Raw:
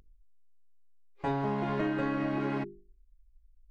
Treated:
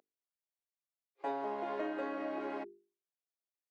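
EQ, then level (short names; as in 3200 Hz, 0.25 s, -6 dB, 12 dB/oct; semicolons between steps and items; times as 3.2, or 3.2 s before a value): HPF 290 Hz 24 dB/oct; bell 640 Hz +7 dB 0.93 oct; -8.0 dB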